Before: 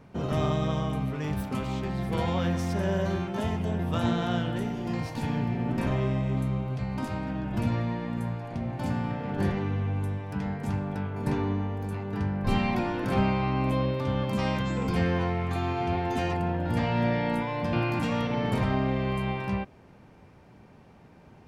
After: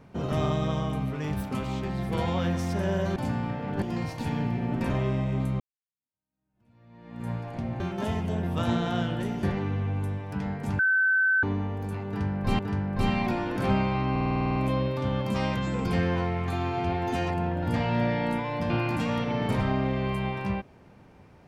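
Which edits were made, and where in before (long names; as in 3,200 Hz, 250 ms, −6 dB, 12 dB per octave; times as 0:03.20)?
0:03.16–0:04.79: swap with 0:08.77–0:09.43
0:06.57–0:08.27: fade in exponential
0:10.79–0:11.43: beep over 1,530 Hz −19.5 dBFS
0:12.07–0:12.59: repeat, 2 plays
0:13.59: stutter 0.05 s, 10 plays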